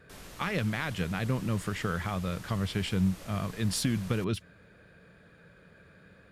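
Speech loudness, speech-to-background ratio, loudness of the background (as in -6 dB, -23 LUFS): -31.5 LUFS, 16.0 dB, -47.5 LUFS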